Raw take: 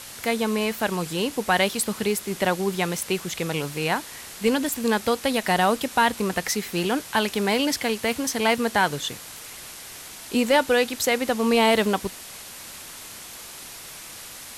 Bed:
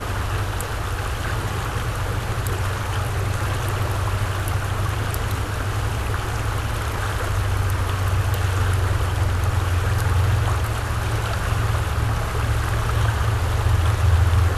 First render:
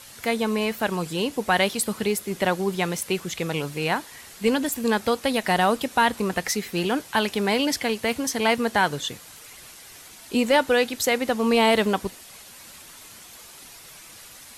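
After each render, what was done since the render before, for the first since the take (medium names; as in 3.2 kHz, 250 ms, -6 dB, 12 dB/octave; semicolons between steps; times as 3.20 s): noise reduction 7 dB, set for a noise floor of -41 dBFS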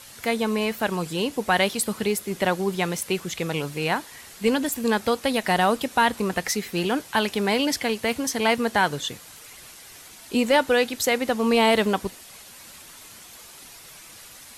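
no audible change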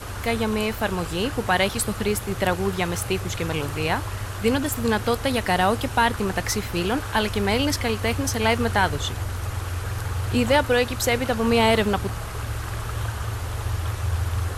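add bed -8 dB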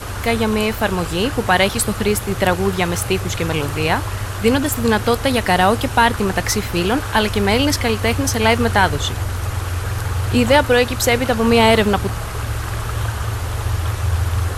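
trim +6 dB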